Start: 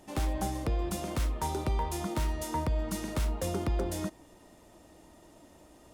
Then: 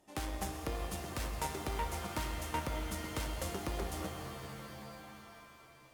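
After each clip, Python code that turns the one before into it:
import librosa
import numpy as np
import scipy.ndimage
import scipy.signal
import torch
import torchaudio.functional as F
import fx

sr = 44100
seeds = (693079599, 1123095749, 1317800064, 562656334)

y = fx.low_shelf(x, sr, hz=370.0, db=-5.0)
y = fx.cheby_harmonics(y, sr, harmonics=(3,), levels_db=(-12,), full_scale_db=-22.5)
y = fx.rev_shimmer(y, sr, seeds[0], rt60_s=3.4, semitones=7, shimmer_db=-2, drr_db=5.5)
y = F.gain(torch.from_numpy(y), 1.0).numpy()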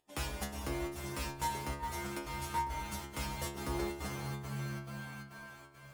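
y = fx.volume_shaper(x, sr, bpm=138, per_beat=1, depth_db=-20, release_ms=86.0, shape='slow start')
y = fx.stiff_resonator(y, sr, f0_hz=68.0, decay_s=0.71, stiffness=0.002)
y = fx.rider(y, sr, range_db=3, speed_s=2.0)
y = F.gain(torch.from_numpy(y), 13.0).numpy()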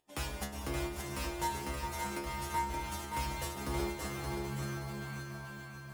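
y = fx.echo_feedback(x, sr, ms=574, feedback_pct=36, wet_db=-5)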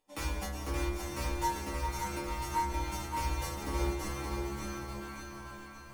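y = fx.room_shoebox(x, sr, seeds[1], volume_m3=120.0, walls='furnished', distance_m=2.3)
y = F.gain(torch.from_numpy(y), -4.0).numpy()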